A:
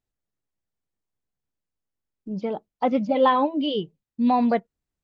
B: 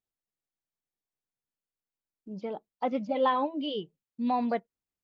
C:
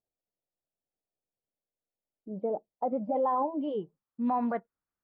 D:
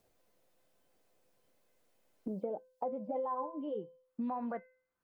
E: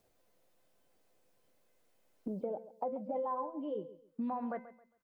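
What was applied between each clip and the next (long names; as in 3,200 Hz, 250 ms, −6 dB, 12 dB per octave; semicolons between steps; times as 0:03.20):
low-shelf EQ 140 Hz −10 dB; level −6.5 dB
low-pass filter sweep 620 Hz → 1,400 Hz, 0:02.62–0:04.43; brickwall limiter −21.5 dBFS, peak gain reduction 9.5 dB
tuned comb filter 510 Hz, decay 0.42 s, mix 80%; multiband upward and downward compressor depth 100%; level +3.5 dB
repeating echo 135 ms, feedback 29%, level −15.5 dB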